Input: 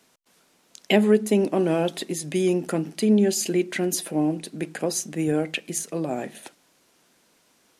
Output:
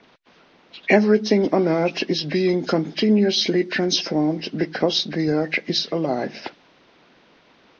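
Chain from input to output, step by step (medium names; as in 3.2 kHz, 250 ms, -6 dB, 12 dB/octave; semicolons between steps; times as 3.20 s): knee-point frequency compression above 1.4 kHz 1.5:1; level-controlled noise filter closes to 2.8 kHz, open at -18.5 dBFS; in parallel at +3 dB: compression, threshold -35 dBFS, peak gain reduction 20.5 dB; on the sum: harmonic-percussive split percussive +5 dB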